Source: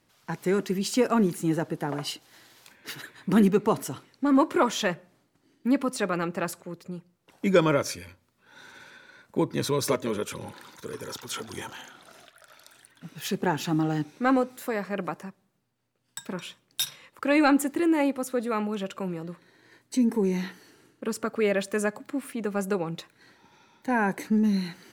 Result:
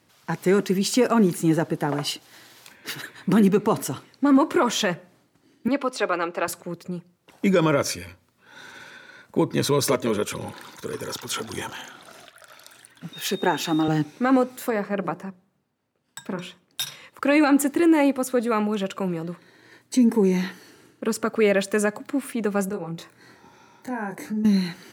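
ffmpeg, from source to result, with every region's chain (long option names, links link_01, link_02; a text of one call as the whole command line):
ffmpeg -i in.wav -filter_complex "[0:a]asettb=1/sr,asplit=3[link_01][link_02][link_03];[link_01]atrim=end=5.684[link_04];[link_02]atrim=start=5.68:end=6.48,asetpts=PTS-STARTPTS,afade=type=in:duration=0.004:curve=qsin,afade=type=out:start_time=0.796:duration=0.004:curve=qsin,acrossover=split=310 5700:gain=0.0708 1 0.251[link_05][link_06][link_07];[link_05][link_06][link_07]amix=inputs=3:normalize=0,bandreject=frequency=1800:width=12[link_08];[link_03]atrim=start=6.476[link_09];[link_04][link_08]acrossfade=duration=0.004:curve1=hsin:curve2=qsin[link_10];[link_10][link_09]acrossfade=duration=0.004:curve1=qsin:curve2=hsin,asettb=1/sr,asplit=3[link_11][link_12][link_13];[link_11]atrim=end=13.134[link_14];[link_12]atrim=start=13.13:end=13.88,asetpts=PTS-STARTPTS,afade=type=in:duration=0.004:curve=qsin,afade=type=out:start_time=0.746:duration=0.004:curve=qsin,highpass=260,aeval=exprs='val(0)+0.00631*sin(2*PI*3700*n/s)':channel_layout=same[link_15];[link_13]atrim=start=13.876[link_16];[link_14][link_15]acrossfade=duration=0.004:curve1=hsin:curve2=qsin[link_17];[link_17][link_16]acrossfade=duration=0.004:curve1=qsin:curve2=hsin,asettb=1/sr,asplit=3[link_18][link_19][link_20];[link_18]atrim=end=14.704[link_21];[link_19]atrim=start=14.7:end=16.87,asetpts=PTS-STARTPTS,afade=type=in:duration=0.004:curve=qsin,afade=type=out:start_time=2.166:duration=0.004:curve=qsin,highshelf=frequency=2400:gain=-8,bandreject=frequency=60:width_type=h:width=6,bandreject=frequency=120:width_type=h:width=6,bandreject=frequency=180:width_type=h:width=6,bandreject=frequency=240:width_type=h:width=6,bandreject=frequency=300:width_type=h:width=6,bandreject=frequency=360:width_type=h:width=6,bandreject=frequency=420:width_type=h:width=6,bandreject=frequency=480:width_type=h:width=6,bandreject=frequency=540:width_type=h:width=6[link_22];[link_20]atrim=start=16.866[link_23];[link_21][link_22]acrossfade=duration=0.004:curve1=hsin:curve2=qsin[link_24];[link_24][link_23]acrossfade=duration=0.004:curve1=qsin:curve2=hsin,asettb=1/sr,asplit=3[link_25][link_26][link_27];[link_25]atrim=end=22.694[link_28];[link_26]atrim=start=22.69:end=24.45,asetpts=PTS-STARTPTS,afade=type=in:duration=0.004:curve=qsin,afade=type=out:start_time=1.756:duration=0.004:curve=qsin,equalizer=frequency=3100:width_type=o:width=0.98:gain=-7,acompressor=threshold=-43dB:ratio=2:attack=3.2:release=140:knee=1:detection=peak,asplit=2[link_29][link_30];[link_30]adelay=24,volume=-3dB[link_31];[link_29][link_31]amix=inputs=2:normalize=0,atrim=end_sample=77616[link_32];[link_27]atrim=start=24.446[link_33];[link_28][link_32]acrossfade=duration=0.004:curve1=hsin:curve2=qsin[link_34];[link_34][link_33]acrossfade=duration=0.004:curve1=qsin:curve2=hsin,highpass=51,alimiter=level_in=14.5dB:limit=-1dB:release=50:level=0:latency=1,volume=-9dB" out.wav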